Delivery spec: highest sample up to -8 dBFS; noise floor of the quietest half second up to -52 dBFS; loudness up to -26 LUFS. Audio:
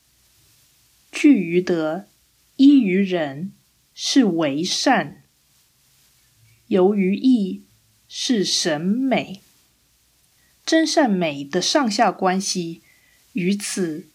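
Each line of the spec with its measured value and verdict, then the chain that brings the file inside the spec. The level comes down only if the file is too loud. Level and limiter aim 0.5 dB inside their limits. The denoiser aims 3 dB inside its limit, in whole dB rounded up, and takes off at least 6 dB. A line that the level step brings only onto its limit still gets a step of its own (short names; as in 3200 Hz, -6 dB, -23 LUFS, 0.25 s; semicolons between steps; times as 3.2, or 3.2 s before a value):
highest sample -4.5 dBFS: fail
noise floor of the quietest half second -61 dBFS: OK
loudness -19.5 LUFS: fail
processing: gain -7 dB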